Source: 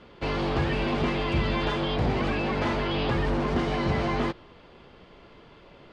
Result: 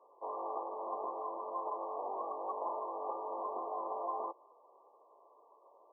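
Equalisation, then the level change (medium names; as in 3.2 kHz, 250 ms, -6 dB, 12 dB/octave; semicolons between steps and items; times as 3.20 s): Bessel high-pass 770 Hz, order 6; brick-wall FIR low-pass 1.2 kHz; -3.0 dB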